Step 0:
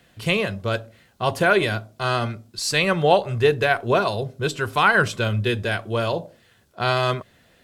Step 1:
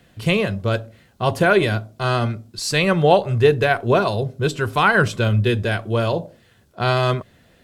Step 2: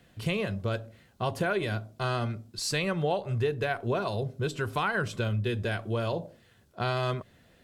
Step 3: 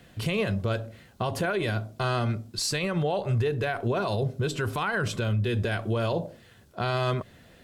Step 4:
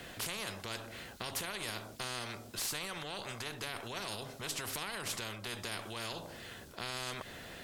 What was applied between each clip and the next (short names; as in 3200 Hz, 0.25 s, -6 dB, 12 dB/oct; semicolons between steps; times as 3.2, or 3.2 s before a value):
low shelf 480 Hz +6 dB
compressor 3:1, threshold -21 dBFS, peak gain reduction 9.5 dB; gain -6 dB
limiter -25.5 dBFS, peak gain reduction 9 dB; gain +6.5 dB
spectral compressor 4:1; gain -2.5 dB